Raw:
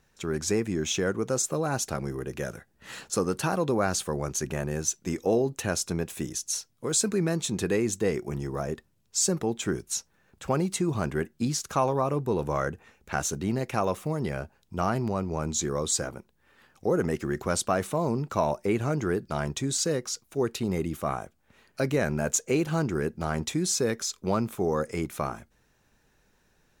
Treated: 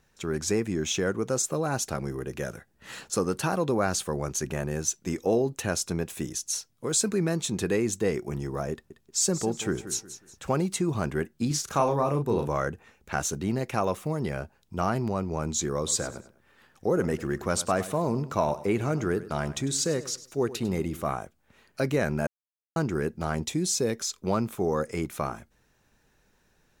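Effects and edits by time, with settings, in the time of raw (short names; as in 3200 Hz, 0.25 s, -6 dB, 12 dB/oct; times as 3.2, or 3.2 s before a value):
8.72–10.62 feedback echo 0.182 s, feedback 32%, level -12.5 dB
11.47–12.48 doubler 35 ms -5.5 dB
15.77–21.12 feedback echo 0.1 s, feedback 33%, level -15.5 dB
22.27–22.76 mute
23.35–24 bell 1400 Hz -7 dB 0.92 oct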